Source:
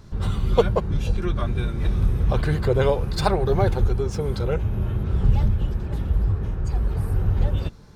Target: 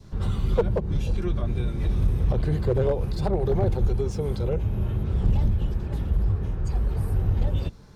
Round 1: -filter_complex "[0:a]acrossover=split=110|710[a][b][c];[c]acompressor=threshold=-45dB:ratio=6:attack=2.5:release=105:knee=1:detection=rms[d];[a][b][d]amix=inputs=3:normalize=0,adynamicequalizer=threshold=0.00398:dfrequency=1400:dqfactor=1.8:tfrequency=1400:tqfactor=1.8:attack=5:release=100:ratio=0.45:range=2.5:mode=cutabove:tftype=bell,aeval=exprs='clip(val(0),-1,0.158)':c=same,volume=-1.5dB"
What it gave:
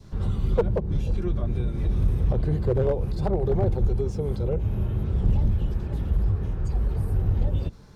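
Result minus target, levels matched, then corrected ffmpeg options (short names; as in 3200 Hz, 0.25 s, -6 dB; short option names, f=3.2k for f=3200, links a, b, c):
compressor: peak gain reduction +6 dB
-filter_complex "[0:a]acrossover=split=110|710[a][b][c];[c]acompressor=threshold=-37.5dB:ratio=6:attack=2.5:release=105:knee=1:detection=rms[d];[a][b][d]amix=inputs=3:normalize=0,adynamicequalizer=threshold=0.00398:dfrequency=1400:dqfactor=1.8:tfrequency=1400:tqfactor=1.8:attack=5:release=100:ratio=0.45:range=2.5:mode=cutabove:tftype=bell,aeval=exprs='clip(val(0),-1,0.158)':c=same,volume=-1.5dB"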